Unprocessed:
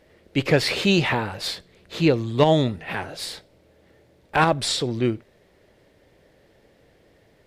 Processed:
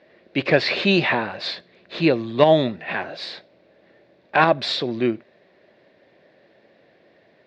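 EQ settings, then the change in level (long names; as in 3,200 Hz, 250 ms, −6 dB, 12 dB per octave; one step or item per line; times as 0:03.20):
loudspeaker in its box 280–3,800 Hz, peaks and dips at 290 Hz −5 dB, 430 Hz −6 dB, 870 Hz −7 dB, 1,300 Hz −7 dB, 2,100 Hz −4 dB, 3,100 Hz −8 dB
parametric band 490 Hz −4 dB 0.22 octaves
+7.5 dB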